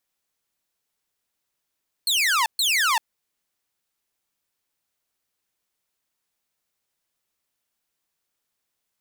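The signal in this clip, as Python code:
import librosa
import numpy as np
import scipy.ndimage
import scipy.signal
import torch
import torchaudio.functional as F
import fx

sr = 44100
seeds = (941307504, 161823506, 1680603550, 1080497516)

y = fx.laser_zaps(sr, level_db=-15.5, start_hz=4400.0, end_hz=850.0, length_s=0.39, wave='saw', shots=2, gap_s=0.13)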